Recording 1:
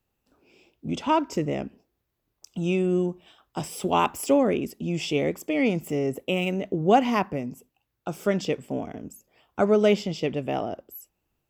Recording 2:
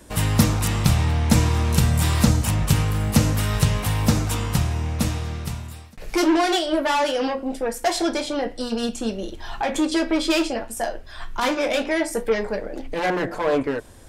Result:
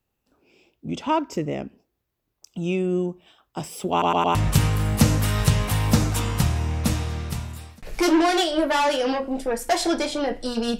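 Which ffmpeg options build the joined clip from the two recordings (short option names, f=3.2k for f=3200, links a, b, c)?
-filter_complex "[0:a]apad=whole_dur=10.79,atrim=end=10.79,asplit=4[a][b][c][d];[a]atrim=end=4.022[e];[b]atrim=start=3.908:end=4.022[f];[c]atrim=start=3.908:end=4.022[g];[d]atrim=start=3.908:end=4.022[h];[1:a]atrim=start=2.498:end=8.94[i];[e][f]acrossfade=d=0.004:c1=hsin:c2=hsin[j];[j][g]acrossfade=d=0.004:c1=hsin:c2=hsin[k];[k][h]acrossfade=d=0.004:c1=hsin:c2=hsin[l];[l][i]acrossfade=d=0.004:c1=hsin:c2=hsin"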